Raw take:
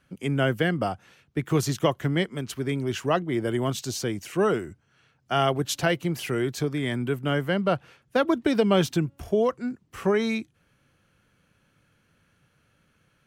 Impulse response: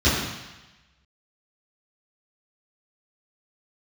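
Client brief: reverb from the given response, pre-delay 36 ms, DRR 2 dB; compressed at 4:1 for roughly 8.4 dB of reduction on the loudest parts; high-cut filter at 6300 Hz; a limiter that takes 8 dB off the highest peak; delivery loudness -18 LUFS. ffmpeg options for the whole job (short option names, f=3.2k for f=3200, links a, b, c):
-filter_complex "[0:a]lowpass=6.3k,acompressor=threshold=-27dB:ratio=4,alimiter=limit=-23.5dB:level=0:latency=1,asplit=2[a][b];[1:a]atrim=start_sample=2205,adelay=36[c];[b][c]afir=irnorm=-1:irlink=0,volume=-21dB[d];[a][d]amix=inputs=2:normalize=0,volume=11dB"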